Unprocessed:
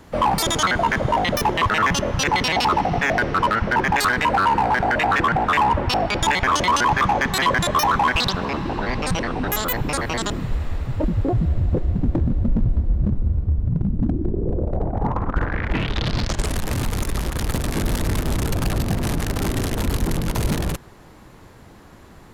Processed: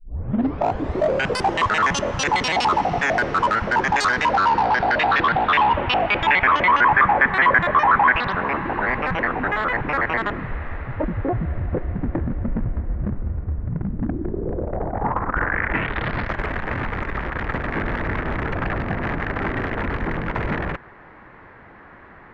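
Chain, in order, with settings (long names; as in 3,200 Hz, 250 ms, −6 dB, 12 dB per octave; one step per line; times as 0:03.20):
turntable start at the beginning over 1.60 s
mid-hump overdrive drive 8 dB, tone 1,800 Hz, clips at −9.5 dBFS
low-pass filter sweep 7,700 Hz → 1,900 Hz, 0:03.67–0:06.94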